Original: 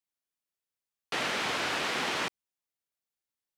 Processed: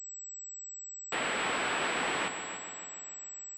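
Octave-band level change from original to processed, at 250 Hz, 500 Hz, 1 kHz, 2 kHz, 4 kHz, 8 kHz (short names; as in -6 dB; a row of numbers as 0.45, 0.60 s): -0.5, +0.5, +0.5, 0.0, -3.5, +6.5 dB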